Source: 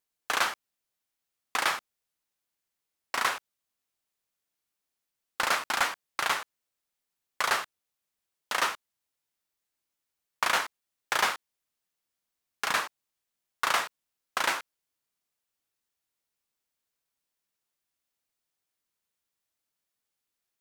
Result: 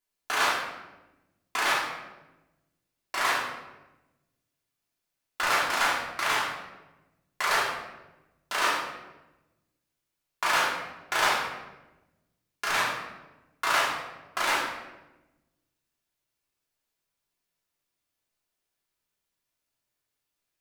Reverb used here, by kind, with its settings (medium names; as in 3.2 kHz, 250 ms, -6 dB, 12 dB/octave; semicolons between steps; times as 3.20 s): simulated room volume 500 m³, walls mixed, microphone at 3.1 m; trim -5 dB